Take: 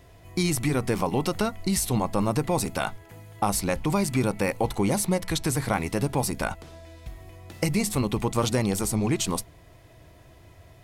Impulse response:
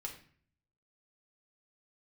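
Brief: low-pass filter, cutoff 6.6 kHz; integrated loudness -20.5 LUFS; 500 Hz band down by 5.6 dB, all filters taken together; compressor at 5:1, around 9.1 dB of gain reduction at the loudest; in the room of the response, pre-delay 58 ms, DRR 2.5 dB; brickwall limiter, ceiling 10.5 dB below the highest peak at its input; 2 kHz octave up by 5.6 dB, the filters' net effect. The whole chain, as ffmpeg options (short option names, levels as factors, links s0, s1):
-filter_complex "[0:a]lowpass=6600,equalizer=f=500:t=o:g=-7.5,equalizer=f=2000:t=o:g=7.5,acompressor=threshold=0.0282:ratio=5,alimiter=level_in=1.68:limit=0.0631:level=0:latency=1,volume=0.596,asplit=2[s0][s1];[1:a]atrim=start_sample=2205,adelay=58[s2];[s1][s2]afir=irnorm=-1:irlink=0,volume=0.891[s3];[s0][s3]amix=inputs=2:normalize=0,volume=7.5"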